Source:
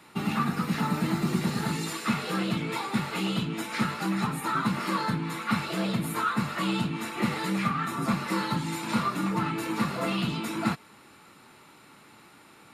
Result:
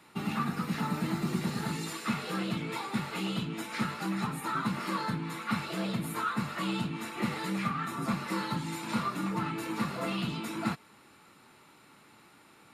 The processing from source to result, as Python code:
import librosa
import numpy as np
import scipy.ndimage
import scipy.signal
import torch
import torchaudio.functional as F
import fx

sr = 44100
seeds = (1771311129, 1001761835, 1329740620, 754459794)

y = x * 10.0 ** (-4.5 / 20.0)